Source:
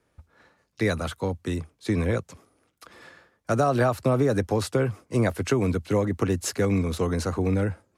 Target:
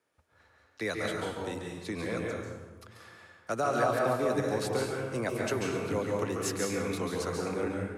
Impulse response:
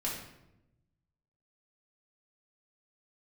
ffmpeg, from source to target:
-filter_complex "[0:a]highpass=frequency=480:poles=1,asplit=2[link_01][link_02];[1:a]atrim=start_sample=2205,asetrate=27342,aresample=44100,adelay=138[link_03];[link_02][link_03]afir=irnorm=-1:irlink=0,volume=-6.5dB[link_04];[link_01][link_04]amix=inputs=2:normalize=0,volume=-5.5dB"

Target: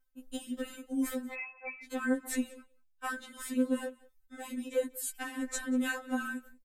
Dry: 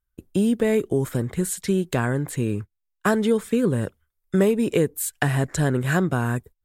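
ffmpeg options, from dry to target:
ffmpeg -i in.wav -filter_complex "[0:a]acompressor=threshold=-26dB:ratio=6,alimiter=level_in=1dB:limit=-24dB:level=0:latency=1:release=21,volume=-1dB,tremolo=f=2.9:d=0.63,asplit=2[link_01][link_02];[link_02]aecho=0:1:186:0.0668[link_03];[link_01][link_03]amix=inputs=2:normalize=0,asettb=1/sr,asplit=3[link_04][link_05][link_06];[link_04]atrim=end=1.334[link_07];[link_05]atrim=start=1.33:end=1.84,asetpts=PTS-STARTPTS,afade=type=in:duration=0.004:curve=qsin,afade=type=out:start_time=0.506:duration=0.004:curve=qsin,lowpass=frequency=2200:width_type=q:width=0.5098,lowpass=frequency=2200:width_type=q:width=0.6013,lowpass=frequency=2200:width_type=q:width=0.9,lowpass=frequency=2200:width_type=q:width=2.563,afreqshift=-2600[link_08];[link_06]atrim=start=1.836[link_09];[link_07][link_08]acrossfade=duration=0.004:curve1=hsin:curve2=qsin[link_10];[link_10][link_09]acrossfade=duration=0.004:curve1=qsin:curve2=hsin,afftfilt=real='re*3.46*eq(mod(b,12),0)':imag='im*3.46*eq(mod(b,12),0)':win_size=2048:overlap=0.75,volume=6.5dB" out.wav

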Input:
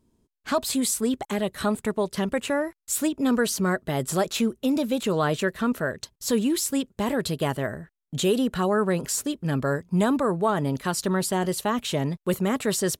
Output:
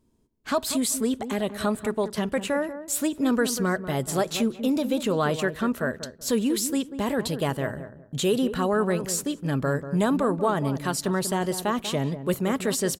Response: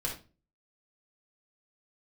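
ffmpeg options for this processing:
-filter_complex "[0:a]asplit=2[link_01][link_02];[link_02]adelay=190,lowpass=frequency=980:poles=1,volume=-10dB,asplit=2[link_03][link_04];[link_04]adelay=190,lowpass=frequency=980:poles=1,volume=0.26,asplit=2[link_05][link_06];[link_06]adelay=190,lowpass=frequency=980:poles=1,volume=0.26[link_07];[link_01][link_03][link_05][link_07]amix=inputs=4:normalize=0,asplit=2[link_08][link_09];[1:a]atrim=start_sample=2205[link_10];[link_09][link_10]afir=irnorm=-1:irlink=0,volume=-25.5dB[link_11];[link_08][link_11]amix=inputs=2:normalize=0,volume=-1dB"

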